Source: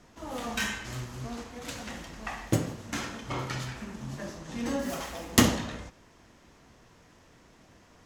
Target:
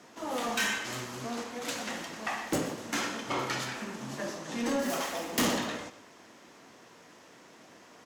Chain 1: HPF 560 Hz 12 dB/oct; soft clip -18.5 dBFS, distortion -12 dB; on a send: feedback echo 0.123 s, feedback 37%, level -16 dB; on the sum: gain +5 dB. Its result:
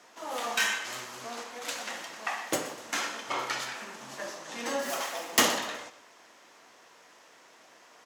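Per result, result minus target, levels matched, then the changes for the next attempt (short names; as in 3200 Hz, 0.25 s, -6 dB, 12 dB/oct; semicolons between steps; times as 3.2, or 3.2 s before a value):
250 Hz band -8.0 dB; soft clip: distortion -7 dB
change: HPF 250 Hz 12 dB/oct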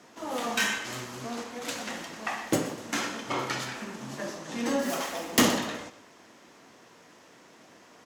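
soft clip: distortion -6 dB
change: soft clip -28.5 dBFS, distortion -5 dB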